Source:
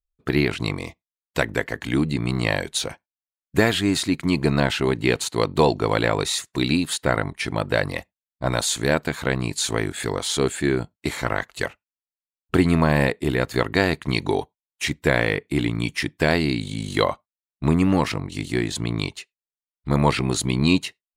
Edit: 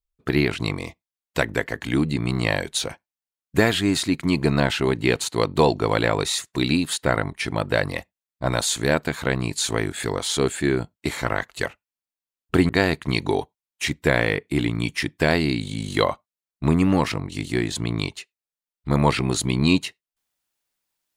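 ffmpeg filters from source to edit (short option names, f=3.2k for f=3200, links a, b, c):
-filter_complex "[0:a]asplit=2[a][b];[a]atrim=end=12.692[c];[b]atrim=start=13.688[d];[c][d]acrossfade=d=0.004:c1=hsin:c2=hsin"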